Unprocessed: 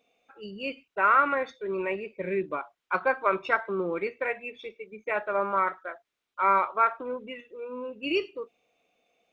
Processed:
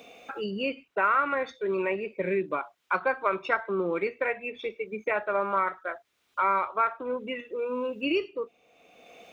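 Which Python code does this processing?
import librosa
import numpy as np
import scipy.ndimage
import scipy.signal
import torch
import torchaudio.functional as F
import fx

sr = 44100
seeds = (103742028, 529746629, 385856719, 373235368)

y = scipy.signal.sosfilt(scipy.signal.butter(2, 40.0, 'highpass', fs=sr, output='sos'), x)
y = fx.band_squash(y, sr, depth_pct=70)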